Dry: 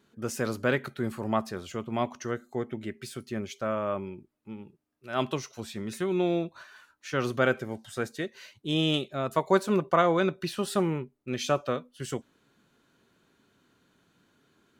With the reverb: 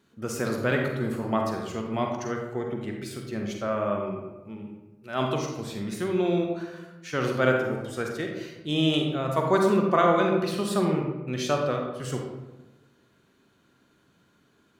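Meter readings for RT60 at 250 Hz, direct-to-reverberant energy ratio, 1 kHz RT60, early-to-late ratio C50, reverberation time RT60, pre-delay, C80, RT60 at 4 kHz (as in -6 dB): 1.4 s, 1.5 dB, 1.0 s, 3.0 dB, 1.1 s, 38 ms, 5.5 dB, 0.60 s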